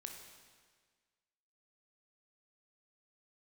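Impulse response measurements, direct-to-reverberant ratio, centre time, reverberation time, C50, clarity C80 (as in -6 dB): 2.5 dB, 46 ms, 1.6 s, 4.5 dB, 6.0 dB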